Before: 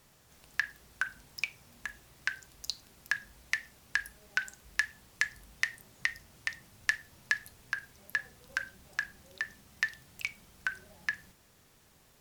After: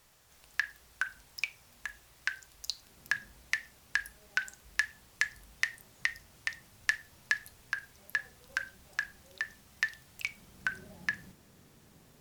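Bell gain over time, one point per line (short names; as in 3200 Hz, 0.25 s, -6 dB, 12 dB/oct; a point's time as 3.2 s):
bell 200 Hz 2.4 oct
2.78 s -7.5 dB
3.07 s +4.5 dB
3.6 s -2.5 dB
10.19 s -2.5 dB
10.7 s +9 dB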